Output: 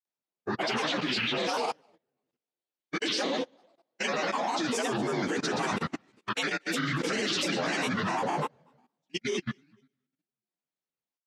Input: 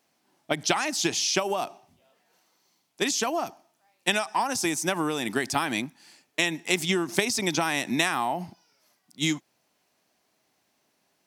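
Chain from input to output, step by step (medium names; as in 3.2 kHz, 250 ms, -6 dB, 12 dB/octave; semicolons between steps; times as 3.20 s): frequency axis rescaled in octaves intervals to 87%; on a send at -5.5 dB: reverberation RT60 1.4 s, pre-delay 52 ms; on the sum: granulator, pitch spread up and down by 7 st; in parallel at +3 dB: peak limiter -26 dBFS, peak gain reduction 12 dB; on the sum: level held to a coarse grid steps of 14 dB; delay 238 ms -20 dB; upward expansion 2.5:1, over -46 dBFS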